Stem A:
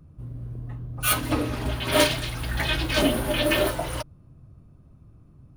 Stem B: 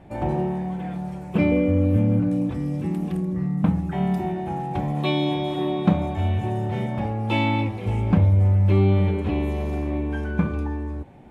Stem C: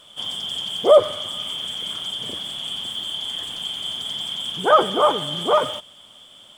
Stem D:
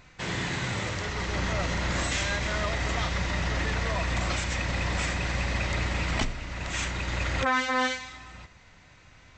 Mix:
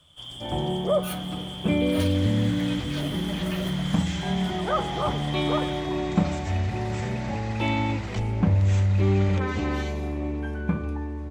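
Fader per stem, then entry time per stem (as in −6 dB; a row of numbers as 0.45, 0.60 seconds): −14.5, −3.5, −11.5, −9.0 decibels; 0.00, 0.30, 0.00, 1.95 seconds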